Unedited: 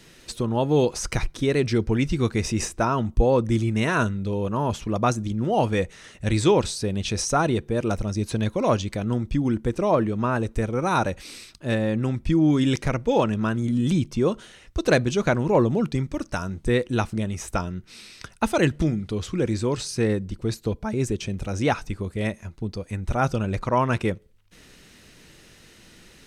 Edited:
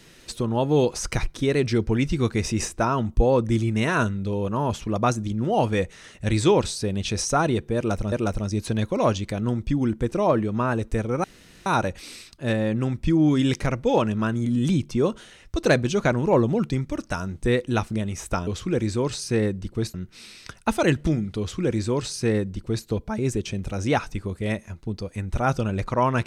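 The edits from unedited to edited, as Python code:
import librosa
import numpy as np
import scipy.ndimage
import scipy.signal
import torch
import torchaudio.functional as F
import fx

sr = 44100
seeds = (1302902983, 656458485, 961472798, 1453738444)

y = fx.edit(x, sr, fx.repeat(start_s=7.76, length_s=0.36, count=2),
    fx.insert_room_tone(at_s=10.88, length_s=0.42),
    fx.duplicate(start_s=19.14, length_s=1.47, to_s=17.69), tone=tone)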